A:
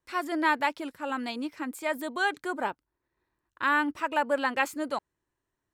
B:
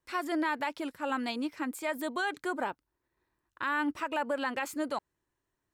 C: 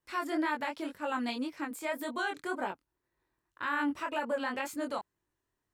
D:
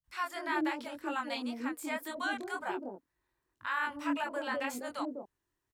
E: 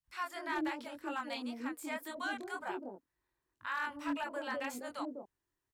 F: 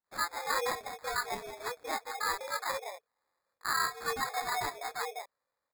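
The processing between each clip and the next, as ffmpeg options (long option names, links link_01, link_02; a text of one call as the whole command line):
ffmpeg -i in.wav -af "alimiter=limit=-21.5dB:level=0:latency=1:release=88" out.wav
ffmpeg -i in.wav -af "flanger=delay=20:depth=5.3:speed=1.9,volume=1.5dB" out.wav
ffmpeg -i in.wav -filter_complex "[0:a]acrossover=split=170|580[link_01][link_02][link_03];[link_03]adelay=40[link_04];[link_02]adelay=240[link_05];[link_01][link_05][link_04]amix=inputs=3:normalize=0" out.wav
ffmpeg -i in.wav -af "asoftclip=type=hard:threshold=-25.5dB,volume=-3.5dB" out.wav
ffmpeg -i in.wav -af "highpass=frequency=350:width_type=q:width=0.5412,highpass=frequency=350:width_type=q:width=1.307,lowpass=frequency=2600:width_type=q:width=0.5176,lowpass=frequency=2600:width_type=q:width=0.7071,lowpass=frequency=2600:width_type=q:width=1.932,afreqshift=170,acrusher=samples=15:mix=1:aa=0.000001,volume=6dB" out.wav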